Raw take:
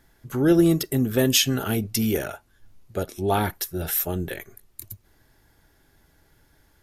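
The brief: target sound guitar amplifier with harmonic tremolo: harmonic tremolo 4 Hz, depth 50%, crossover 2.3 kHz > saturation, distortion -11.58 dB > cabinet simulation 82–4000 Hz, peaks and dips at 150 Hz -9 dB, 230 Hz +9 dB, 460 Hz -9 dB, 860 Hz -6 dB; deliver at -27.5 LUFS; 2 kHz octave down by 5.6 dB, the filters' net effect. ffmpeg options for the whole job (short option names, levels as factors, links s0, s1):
-filter_complex "[0:a]equalizer=f=2000:t=o:g=-7.5,acrossover=split=2300[s0][s1];[s0]aeval=exprs='val(0)*(1-0.5/2+0.5/2*cos(2*PI*4*n/s))':c=same[s2];[s1]aeval=exprs='val(0)*(1-0.5/2-0.5/2*cos(2*PI*4*n/s))':c=same[s3];[s2][s3]amix=inputs=2:normalize=0,asoftclip=threshold=0.106,highpass=82,equalizer=f=150:t=q:w=4:g=-9,equalizer=f=230:t=q:w=4:g=9,equalizer=f=460:t=q:w=4:g=-9,equalizer=f=860:t=q:w=4:g=-6,lowpass=f=4000:w=0.5412,lowpass=f=4000:w=1.3066,volume=1.12"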